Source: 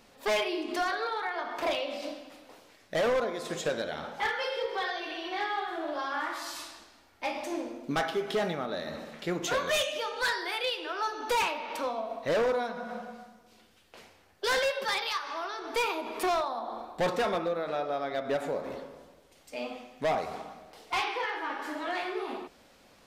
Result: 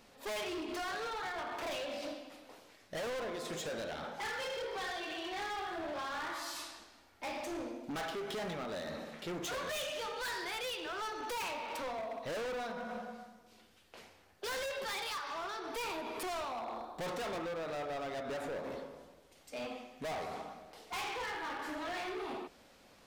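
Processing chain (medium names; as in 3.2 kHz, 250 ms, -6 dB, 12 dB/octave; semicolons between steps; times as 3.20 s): hard clipper -34.5 dBFS, distortion -6 dB; trim -2.5 dB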